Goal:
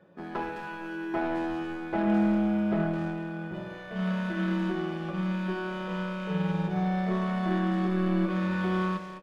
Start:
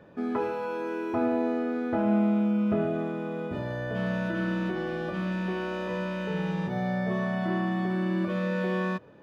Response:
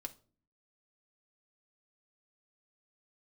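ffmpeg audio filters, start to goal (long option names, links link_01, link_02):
-filter_complex "[0:a]lowshelf=frequency=78:gain=-10,aeval=exprs='0.168*(cos(1*acos(clip(val(0)/0.168,-1,1)))-cos(1*PI/2))+0.0119*(cos(7*acos(clip(val(0)/0.168,-1,1)))-cos(7*PI/2))':channel_layout=same,asplit=2[link_01][link_02];[link_02]adelay=210,highpass=300,lowpass=3400,asoftclip=type=hard:threshold=-36dB,volume=-6dB[link_03];[link_01][link_03]amix=inputs=2:normalize=0[link_04];[1:a]atrim=start_sample=2205,asetrate=26460,aresample=44100[link_05];[link_04][link_05]afir=irnorm=-1:irlink=0"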